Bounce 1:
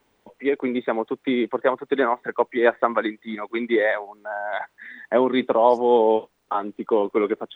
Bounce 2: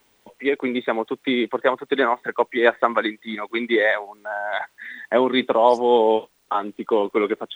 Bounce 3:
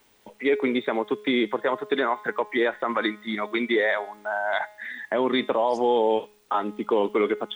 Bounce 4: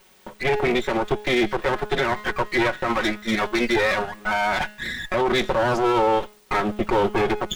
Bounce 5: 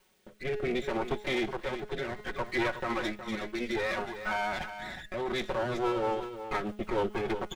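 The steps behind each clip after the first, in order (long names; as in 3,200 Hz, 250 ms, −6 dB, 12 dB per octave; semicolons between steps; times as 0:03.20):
high-shelf EQ 2,300 Hz +10.5 dB
brickwall limiter −13.5 dBFS, peak gain reduction 11.5 dB; tuned comb filter 210 Hz, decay 0.63 s, harmonics all, mix 50%; level +6 dB
lower of the sound and its delayed copy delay 5.4 ms; brickwall limiter −20 dBFS, peak gain reduction 7 dB; level +8 dB
rotating-speaker cabinet horn 0.65 Hz, later 6.7 Hz, at 0:05.31; on a send: single-tap delay 366 ms −10.5 dB; on the sum: level −8.5 dB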